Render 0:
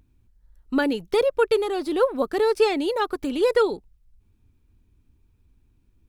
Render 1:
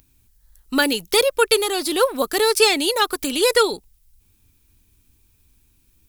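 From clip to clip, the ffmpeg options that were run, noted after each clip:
-af "crystalizer=i=9:c=0"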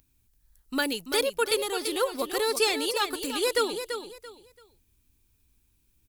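-af "aecho=1:1:337|674|1011:0.376|0.0977|0.0254,volume=-9dB"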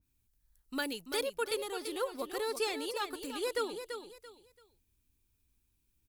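-af "adynamicequalizer=threshold=0.00891:dfrequency=2100:dqfactor=0.7:tfrequency=2100:tqfactor=0.7:attack=5:release=100:ratio=0.375:range=2:mode=cutabove:tftype=highshelf,volume=-8dB"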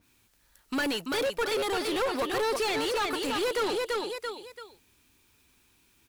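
-filter_complex "[0:a]asplit=2[a][b];[b]highpass=f=720:p=1,volume=30dB,asoftclip=type=tanh:threshold=-20.5dB[c];[a][c]amix=inputs=2:normalize=0,lowpass=f=2.8k:p=1,volume=-6dB"

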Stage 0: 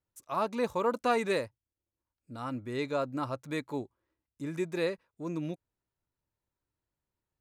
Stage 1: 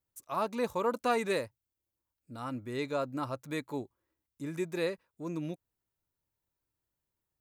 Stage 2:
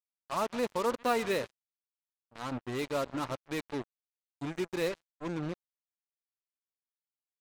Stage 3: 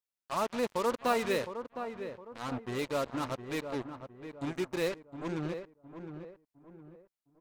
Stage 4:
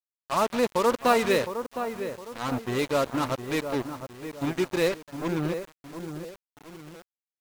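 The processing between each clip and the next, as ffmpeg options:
-af "highshelf=f=12k:g=11.5,volume=-1.5dB"
-af "lowpass=5.8k,aecho=1:1:135|270|405:0.126|0.0428|0.0146,acrusher=bits=5:mix=0:aa=0.5"
-filter_complex "[0:a]asplit=2[a][b];[b]adelay=711,lowpass=f=1.4k:p=1,volume=-8.5dB,asplit=2[c][d];[d]adelay=711,lowpass=f=1.4k:p=1,volume=0.39,asplit=2[e][f];[f]adelay=711,lowpass=f=1.4k:p=1,volume=0.39,asplit=2[g][h];[h]adelay=711,lowpass=f=1.4k:p=1,volume=0.39[i];[a][c][e][g][i]amix=inputs=5:normalize=0"
-af "acrusher=bits=8:mix=0:aa=0.000001,volume=7.5dB"

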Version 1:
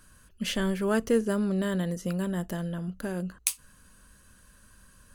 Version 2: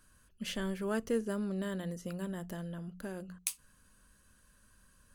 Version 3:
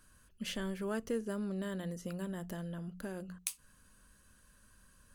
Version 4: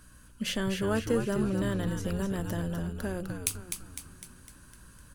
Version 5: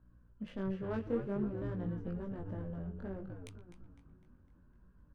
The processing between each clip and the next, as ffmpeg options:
-af "bandreject=f=60:t=h:w=6,bandreject=f=120:t=h:w=6,bandreject=f=180:t=h:w=6,volume=-8dB"
-af "acompressor=threshold=-40dB:ratio=1.5,volume=1dB"
-filter_complex "[0:a]aeval=exprs='val(0)+0.000562*(sin(2*PI*60*n/s)+sin(2*PI*2*60*n/s)/2+sin(2*PI*3*60*n/s)/3+sin(2*PI*4*60*n/s)/4+sin(2*PI*5*60*n/s)/5)':c=same,asplit=2[a][b];[b]asplit=6[c][d][e][f][g][h];[c]adelay=253,afreqshift=-90,volume=-6dB[i];[d]adelay=506,afreqshift=-180,volume=-11.7dB[j];[e]adelay=759,afreqshift=-270,volume=-17.4dB[k];[f]adelay=1012,afreqshift=-360,volume=-23dB[l];[g]adelay=1265,afreqshift=-450,volume=-28.7dB[m];[h]adelay=1518,afreqshift=-540,volume=-34.4dB[n];[i][j][k][l][m][n]amix=inputs=6:normalize=0[o];[a][o]amix=inputs=2:normalize=0,volume=7.5dB"
-filter_complex "[0:a]adynamicsmooth=sensitivity=1:basefreq=830,asplit=2[a][b];[b]adelay=120,highpass=300,lowpass=3.4k,asoftclip=type=hard:threshold=-24dB,volume=-17dB[c];[a][c]amix=inputs=2:normalize=0,flanger=delay=17:depth=4.9:speed=0.53,volume=-5dB"

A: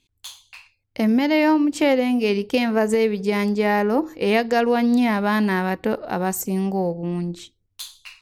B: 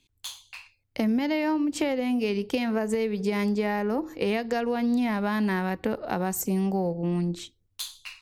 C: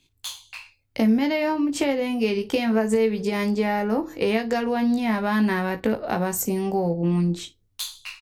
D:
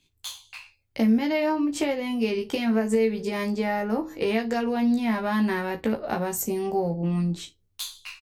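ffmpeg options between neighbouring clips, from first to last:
-filter_complex "[0:a]acrossover=split=140[a][b];[b]acompressor=threshold=-24dB:ratio=6[c];[a][c]amix=inputs=2:normalize=0"
-af "aecho=1:1:18|56:0.501|0.126,volume=3dB"
-filter_complex "[0:a]asplit=2[a][b];[b]adelay=13,volume=-6.5dB[c];[a][c]amix=inputs=2:normalize=0,volume=-3.5dB"

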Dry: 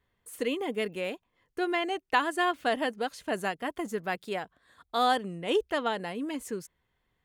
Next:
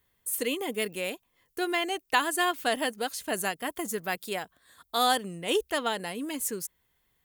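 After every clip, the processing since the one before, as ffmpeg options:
-af "aemphasis=mode=production:type=75fm"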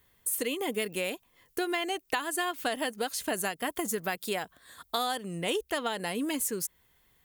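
-af "acompressor=threshold=-34dB:ratio=6,volume=6dB"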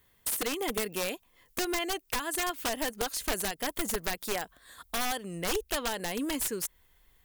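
-af "aeval=exprs='(mod(14.1*val(0)+1,2)-1)/14.1':c=same,asubboost=boost=5:cutoff=52"

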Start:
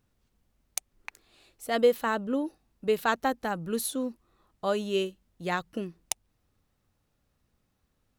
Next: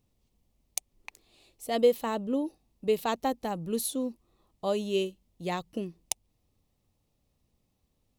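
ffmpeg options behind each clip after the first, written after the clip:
-af "equalizer=f=1.5k:w=2.4:g=-14.5"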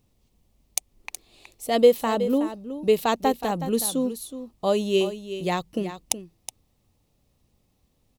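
-af "aecho=1:1:370:0.266,volume=6.5dB"

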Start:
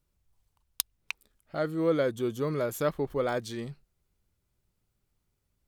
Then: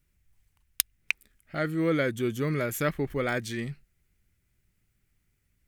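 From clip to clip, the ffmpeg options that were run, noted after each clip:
-af "equalizer=f=500:t=o:w=1:g=-6,equalizer=f=1k:t=o:w=1:g=-9,equalizer=f=2k:t=o:w=1:g=9,equalizer=f=4k:t=o:w=1:g=-5,volume=5dB"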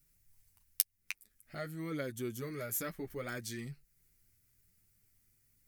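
-af "acompressor=threshold=-51dB:ratio=1.5,aexciter=amount=2.3:drive=7:freq=4.4k,flanger=delay=6.8:depth=3.9:regen=-14:speed=0.52:shape=triangular"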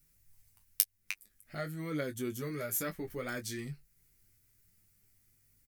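-filter_complex "[0:a]asplit=2[a][b];[b]adelay=20,volume=-9dB[c];[a][c]amix=inputs=2:normalize=0,volume=2dB"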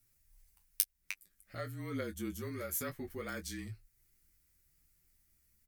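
-af "afreqshift=-36,volume=-3dB"

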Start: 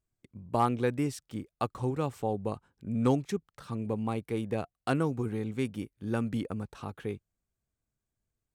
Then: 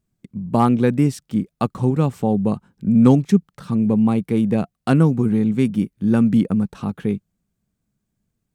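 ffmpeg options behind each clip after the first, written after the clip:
-af "equalizer=f=190:w=1.5:g=14.5,volume=7dB"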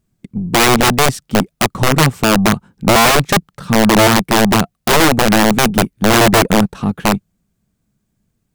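-af "aeval=exprs='(mod(4.22*val(0)+1,2)-1)/4.22':c=same,aeval=exprs='0.237*(cos(1*acos(clip(val(0)/0.237,-1,1)))-cos(1*PI/2))+0.0075*(cos(8*acos(clip(val(0)/0.237,-1,1)))-cos(8*PI/2))':c=same,volume=7.5dB"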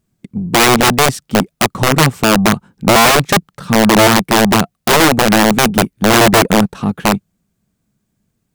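-af "lowshelf=f=68:g=-7.5,volume=1.5dB"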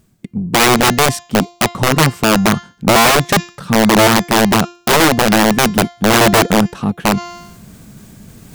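-af "bandreject=f=348.5:t=h:w=4,bandreject=f=697:t=h:w=4,bandreject=f=1.0455k:t=h:w=4,bandreject=f=1.394k:t=h:w=4,bandreject=f=1.7425k:t=h:w=4,bandreject=f=2.091k:t=h:w=4,bandreject=f=2.4395k:t=h:w=4,bandreject=f=2.788k:t=h:w=4,bandreject=f=3.1365k:t=h:w=4,bandreject=f=3.485k:t=h:w=4,bandreject=f=3.8335k:t=h:w=4,bandreject=f=4.182k:t=h:w=4,bandreject=f=4.5305k:t=h:w=4,bandreject=f=4.879k:t=h:w=4,bandreject=f=5.2275k:t=h:w=4,bandreject=f=5.576k:t=h:w=4,bandreject=f=5.9245k:t=h:w=4,bandreject=f=6.273k:t=h:w=4,bandreject=f=6.6215k:t=h:w=4,bandreject=f=6.97k:t=h:w=4,bandreject=f=7.3185k:t=h:w=4,areverse,acompressor=mode=upward:threshold=-13dB:ratio=2.5,areverse,volume=-1dB"

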